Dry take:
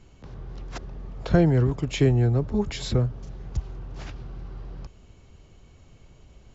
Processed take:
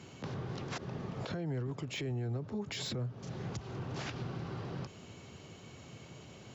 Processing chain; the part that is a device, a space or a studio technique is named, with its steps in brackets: broadcast voice chain (high-pass 110 Hz 24 dB/octave; de-esser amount 90%; compression 4:1, threshold -39 dBFS, peak gain reduction 20.5 dB; peaking EQ 3.4 kHz +2.5 dB 2.6 oct; peak limiter -35.5 dBFS, peak gain reduction 10.5 dB); trim +5.5 dB

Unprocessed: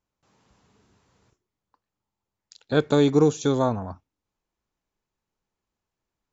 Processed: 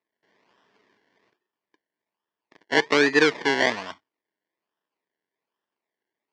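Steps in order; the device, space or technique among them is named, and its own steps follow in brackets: circuit-bent sampling toy (decimation with a swept rate 28×, swing 60% 1.2 Hz; cabinet simulation 520–4900 Hz, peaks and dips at 540 Hz -7 dB, 770 Hz -8 dB, 1.3 kHz -8 dB, 1.8 kHz +5 dB, 2.6 kHz -4 dB, 3.9 kHz -5 dB); trim +7 dB

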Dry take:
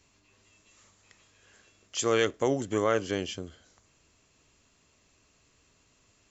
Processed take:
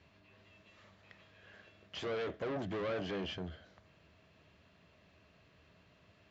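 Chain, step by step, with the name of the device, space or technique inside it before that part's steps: guitar amplifier (valve stage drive 38 dB, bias 0.3; tone controls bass +3 dB, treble 0 dB; cabinet simulation 77–4000 Hz, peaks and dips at 78 Hz +5 dB, 180 Hz +7 dB, 250 Hz -3 dB, 630 Hz +8 dB, 1.7 kHz +4 dB); trim +1 dB

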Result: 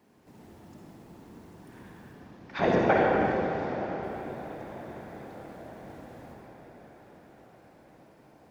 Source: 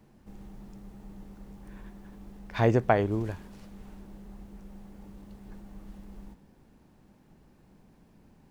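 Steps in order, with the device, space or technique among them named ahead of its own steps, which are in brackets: 2.13–4.03 s: low-pass 5.9 kHz 24 dB/octave; echo that smears into a reverb 932 ms, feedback 57%, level -15 dB; whispering ghost (whisper effect; high-pass 380 Hz 6 dB/octave; reverberation RT60 3.5 s, pre-delay 49 ms, DRR -3 dB)

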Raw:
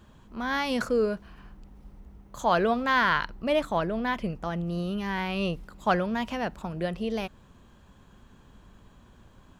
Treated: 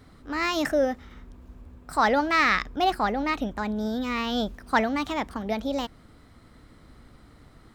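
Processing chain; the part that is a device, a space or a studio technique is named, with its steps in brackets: nightcore (tape speed +24%); trim +2 dB

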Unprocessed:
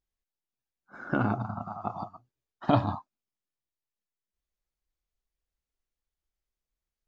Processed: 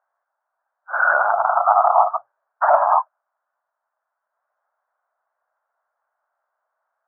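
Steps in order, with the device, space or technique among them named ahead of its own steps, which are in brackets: loud club master (compression 1.5:1, threshold -31 dBFS, peak gain reduction 5.5 dB; hard clipper -19.5 dBFS, distortion -19 dB; loudness maximiser +28.5 dB); elliptic band-pass 620–1500 Hz, stop band 50 dB; trim -1 dB

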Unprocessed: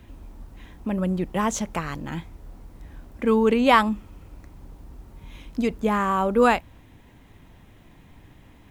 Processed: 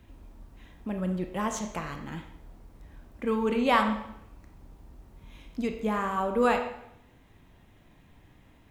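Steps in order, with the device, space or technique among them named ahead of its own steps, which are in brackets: filtered reverb send (on a send: high-pass 280 Hz + low-pass 6.2 kHz + reverberation RT60 0.80 s, pre-delay 21 ms, DRR 4.5 dB); on the sum: trim -7 dB

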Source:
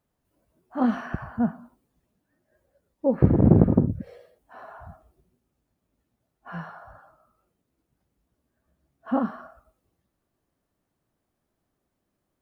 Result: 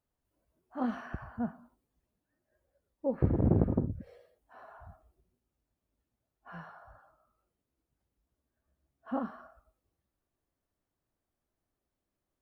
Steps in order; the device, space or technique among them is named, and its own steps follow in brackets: low shelf boost with a cut just above (bass shelf 80 Hz +6 dB; peaking EQ 170 Hz -4.5 dB 1.2 oct); trim -8.5 dB

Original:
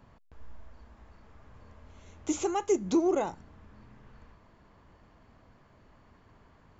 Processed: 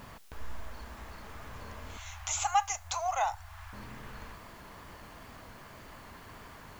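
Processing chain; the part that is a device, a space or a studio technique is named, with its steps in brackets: noise-reduction cassette on a plain deck (tape noise reduction on one side only encoder only; wow and flutter; white noise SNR 34 dB); 1.97–3.73 s: Chebyshev band-stop 100–710 Hz, order 4; trim +6.5 dB

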